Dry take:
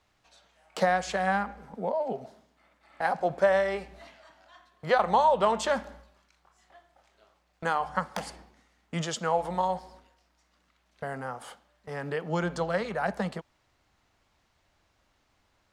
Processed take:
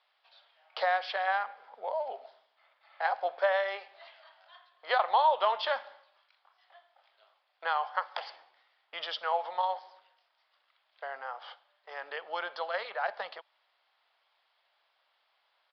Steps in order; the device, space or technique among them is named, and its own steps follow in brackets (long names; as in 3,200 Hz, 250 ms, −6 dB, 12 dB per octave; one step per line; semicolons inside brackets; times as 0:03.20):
musical greeting card (downsampling to 11,025 Hz; high-pass filter 610 Hz 24 dB per octave; parametric band 3,300 Hz +6 dB 0.26 octaves)
level −1.5 dB